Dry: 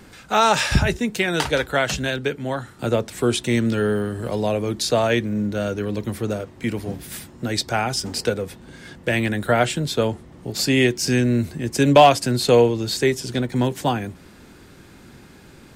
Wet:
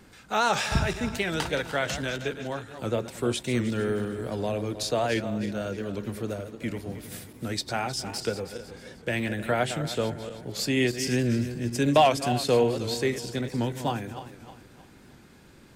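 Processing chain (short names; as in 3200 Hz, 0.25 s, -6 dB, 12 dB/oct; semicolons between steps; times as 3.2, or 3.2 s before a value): regenerating reverse delay 0.156 s, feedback 61%, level -10.5 dB; record warp 78 rpm, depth 100 cents; gain -7.5 dB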